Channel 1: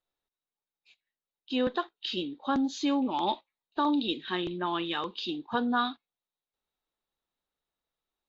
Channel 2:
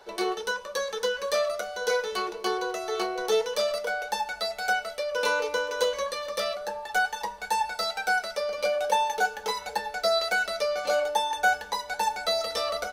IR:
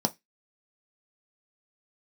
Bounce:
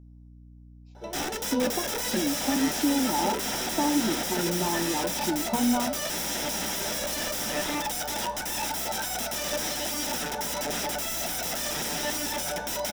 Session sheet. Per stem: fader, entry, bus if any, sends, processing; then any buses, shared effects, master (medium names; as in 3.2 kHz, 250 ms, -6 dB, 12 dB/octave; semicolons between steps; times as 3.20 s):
+0.5 dB, 0.00 s, send -4.5 dB, high-order bell 2.3 kHz -11.5 dB; compression, threshold -32 dBFS, peak gain reduction 8.5 dB
-2.5 dB, 0.95 s, send -9 dB, level rider gain up to 15 dB; peak limiter -10 dBFS, peak gain reduction 8.5 dB; integer overflow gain 22.5 dB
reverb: on, RT60 0.15 s, pre-delay 3 ms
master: flange 1.4 Hz, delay 6.9 ms, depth 8.6 ms, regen -76%; hum 60 Hz, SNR 20 dB